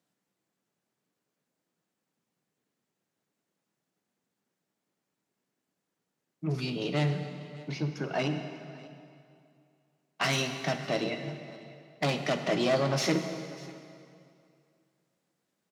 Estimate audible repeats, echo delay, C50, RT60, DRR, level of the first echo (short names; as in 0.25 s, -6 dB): 1, 0.596 s, 7.5 dB, 2.5 s, 6.0 dB, -21.0 dB